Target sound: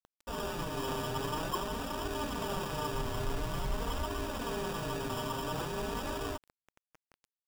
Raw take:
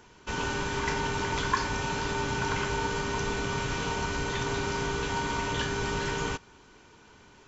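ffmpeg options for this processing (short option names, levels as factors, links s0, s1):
-filter_complex "[0:a]asplit=3[s0][s1][s2];[s0]afade=t=out:st=2.93:d=0.02[s3];[s1]asubboost=boost=4:cutoff=100,afade=t=in:st=2.93:d=0.02,afade=t=out:st=4.03:d=0.02[s4];[s2]afade=t=in:st=4.03:d=0.02[s5];[s3][s4][s5]amix=inputs=3:normalize=0,acrusher=samples=21:mix=1:aa=0.000001,asoftclip=type=hard:threshold=0.0708,flanger=delay=2.6:depth=5.7:regen=-3:speed=0.48:shape=triangular,acrusher=bits=7:mix=0:aa=0.000001,volume=0.75"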